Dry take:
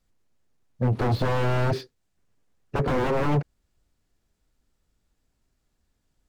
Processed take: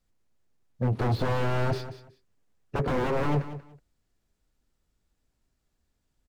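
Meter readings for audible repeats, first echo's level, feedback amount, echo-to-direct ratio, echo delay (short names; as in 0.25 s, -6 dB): 2, -13.0 dB, 20%, -13.0 dB, 0.186 s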